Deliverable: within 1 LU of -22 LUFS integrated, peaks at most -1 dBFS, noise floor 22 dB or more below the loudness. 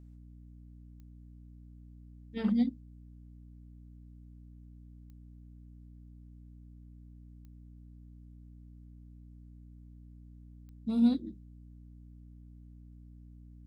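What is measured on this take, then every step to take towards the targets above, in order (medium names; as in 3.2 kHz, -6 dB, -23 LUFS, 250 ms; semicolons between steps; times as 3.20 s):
clicks found 4; hum 60 Hz; highest harmonic 300 Hz; hum level -49 dBFS; loudness -31.0 LUFS; peak level -16.5 dBFS; loudness target -22.0 LUFS
-> de-click; de-hum 60 Hz, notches 5; trim +9 dB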